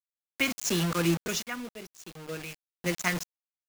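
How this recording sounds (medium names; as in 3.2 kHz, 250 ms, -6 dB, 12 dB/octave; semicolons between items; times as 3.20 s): phasing stages 2, 1.9 Hz, lowest notch 490–1100 Hz; a quantiser's noise floor 6-bit, dither none; random-step tremolo 3.5 Hz, depth 85%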